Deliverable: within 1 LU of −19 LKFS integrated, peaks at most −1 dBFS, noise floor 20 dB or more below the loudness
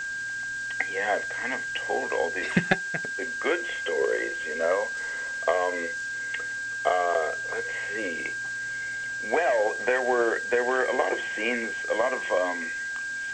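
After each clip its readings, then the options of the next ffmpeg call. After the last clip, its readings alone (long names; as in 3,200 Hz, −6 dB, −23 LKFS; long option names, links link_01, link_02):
interfering tone 1,600 Hz; level of the tone −30 dBFS; background noise floor −33 dBFS; target noise floor −47 dBFS; integrated loudness −27.0 LKFS; sample peak −8.0 dBFS; target loudness −19.0 LKFS
→ -af "bandreject=frequency=1600:width=30"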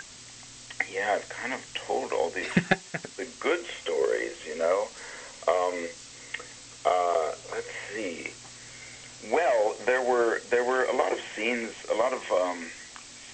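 interfering tone none found; background noise floor −47 dBFS; target noise floor −49 dBFS
→ -af "afftdn=noise_reduction=6:noise_floor=-47"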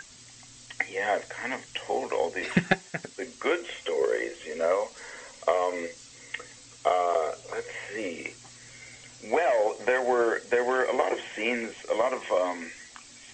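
background noise floor −50 dBFS; integrated loudness −28.5 LKFS; sample peak −8.5 dBFS; target loudness −19.0 LKFS
→ -af "volume=9.5dB,alimiter=limit=-1dB:level=0:latency=1"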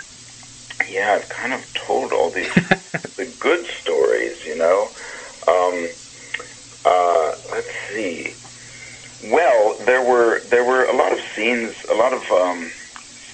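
integrated loudness −19.5 LKFS; sample peak −1.0 dBFS; background noise floor −41 dBFS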